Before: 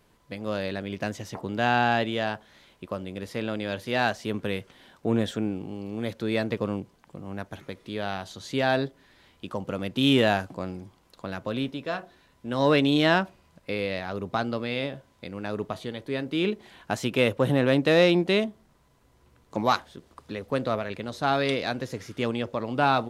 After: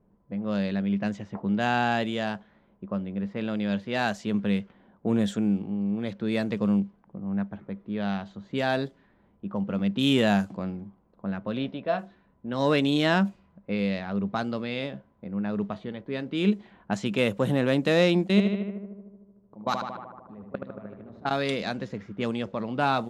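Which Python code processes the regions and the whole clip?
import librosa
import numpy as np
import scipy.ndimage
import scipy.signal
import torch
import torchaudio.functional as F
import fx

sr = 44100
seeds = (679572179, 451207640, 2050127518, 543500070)

y = fx.chain(x, sr, fx.lowpass(hz=4400.0, slope=24),
    fx.peak_eq(hz=650.0, db=9.5, octaves=0.53), at=(11.57, 11.99))
y = fx.chain(y, sr, fx.level_steps(step_db=23),
    fx.echo_filtered(ms=76, feedback_pct=72, hz=3700.0, wet_db=-5), at=(18.27, 21.31))
y = fx.dynamic_eq(y, sr, hz=7200.0, q=4.0, threshold_db=-59.0, ratio=4.0, max_db=7)
y = fx.env_lowpass(y, sr, base_hz=680.0, full_db=-22.0)
y = fx.peak_eq(y, sr, hz=200.0, db=15.0, octaves=0.2)
y = y * 10.0 ** (-2.5 / 20.0)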